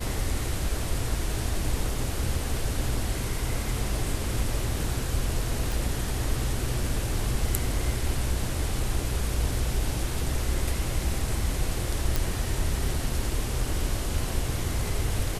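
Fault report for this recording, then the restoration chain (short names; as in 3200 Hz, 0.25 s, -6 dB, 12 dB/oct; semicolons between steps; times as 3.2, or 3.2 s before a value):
5.72 pop
12.16 pop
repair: de-click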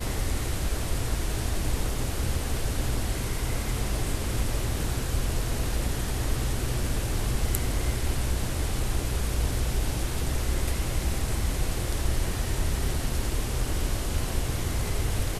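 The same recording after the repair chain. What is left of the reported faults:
none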